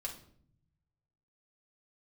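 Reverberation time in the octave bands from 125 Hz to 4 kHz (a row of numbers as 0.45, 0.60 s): 1.7, 1.2, 0.70, 0.50, 0.45, 0.45 s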